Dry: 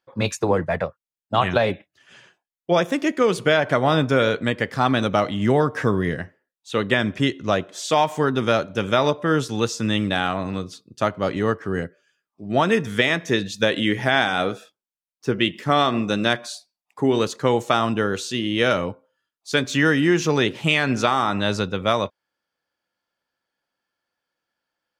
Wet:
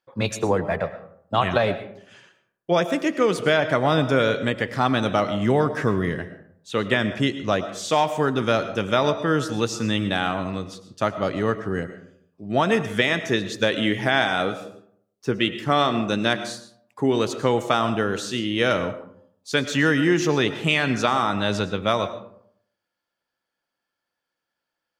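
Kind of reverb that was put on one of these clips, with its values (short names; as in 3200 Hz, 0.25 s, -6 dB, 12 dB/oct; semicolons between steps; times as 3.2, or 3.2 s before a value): digital reverb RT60 0.67 s, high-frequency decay 0.45×, pre-delay 70 ms, DRR 11.5 dB; gain -1.5 dB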